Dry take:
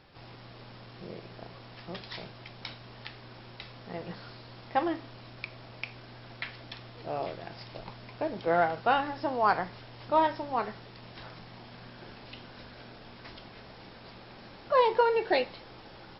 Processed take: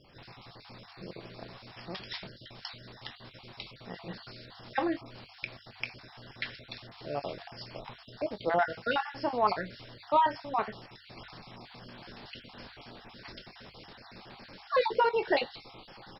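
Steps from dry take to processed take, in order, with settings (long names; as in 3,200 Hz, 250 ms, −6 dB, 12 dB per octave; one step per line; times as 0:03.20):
time-frequency cells dropped at random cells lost 33%
high-shelf EQ 4,600 Hz +7 dB
mains-hum notches 50/100 Hz
double-tracking delay 21 ms −13 dB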